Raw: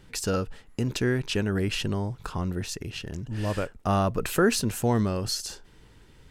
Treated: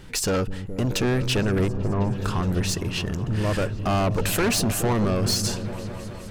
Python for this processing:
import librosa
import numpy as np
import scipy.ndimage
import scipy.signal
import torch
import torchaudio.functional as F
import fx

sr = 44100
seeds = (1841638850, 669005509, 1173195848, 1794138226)

y = fx.cheby1_lowpass(x, sr, hz=1200.0, order=8, at=(1.68, 2.15))
y = 10.0 ** (-28.5 / 20.0) * np.tanh(y / 10.0 ** (-28.5 / 20.0))
y = fx.echo_opening(y, sr, ms=210, hz=200, octaves=1, feedback_pct=70, wet_db=-6)
y = y * 10.0 ** (9.0 / 20.0)